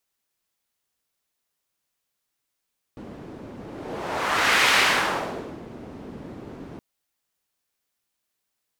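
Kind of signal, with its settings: whoosh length 3.82 s, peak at 1.75 s, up 1.21 s, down 0.98 s, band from 280 Hz, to 2.1 kHz, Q 1.1, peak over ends 21 dB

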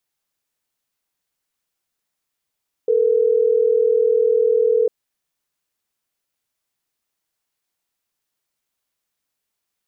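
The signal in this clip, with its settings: call progress tone ringback tone, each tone -16 dBFS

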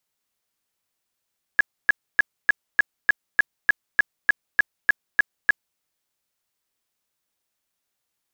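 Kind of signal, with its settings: tone bursts 1.68 kHz, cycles 27, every 0.30 s, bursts 14, -10.5 dBFS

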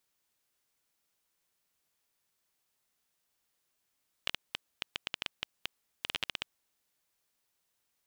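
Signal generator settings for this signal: random clicks 9.6 per s -14.5 dBFS 2.32 s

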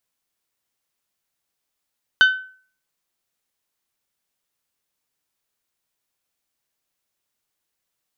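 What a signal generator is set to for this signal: glass hit bell, lowest mode 1.52 kHz, decay 0.46 s, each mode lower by 7.5 dB, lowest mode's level -7 dB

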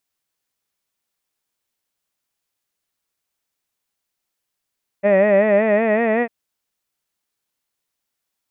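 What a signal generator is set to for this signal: formant vowel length 1.25 s, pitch 195 Hz, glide +3 st, F1 590 Hz, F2 1.9 kHz, F3 2.5 kHz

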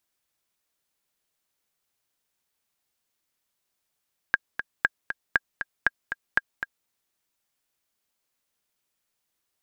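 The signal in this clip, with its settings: metronome 236 bpm, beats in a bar 2, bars 5, 1.62 kHz, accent 9.5 dB -6 dBFS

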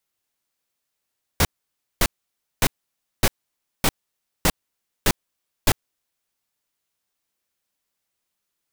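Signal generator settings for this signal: noise bursts pink, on 0.05 s, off 0.56 s, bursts 8, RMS -16.5 dBFS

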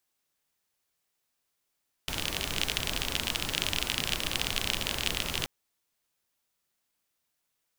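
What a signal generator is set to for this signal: rain from filtered ticks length 3.38 s, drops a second 36, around 3 kHz, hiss -1.5 dB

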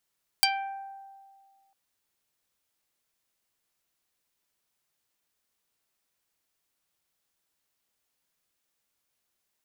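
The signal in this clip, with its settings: plucked string G5, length 1.30 s, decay 1.90 s, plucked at 0.4, dark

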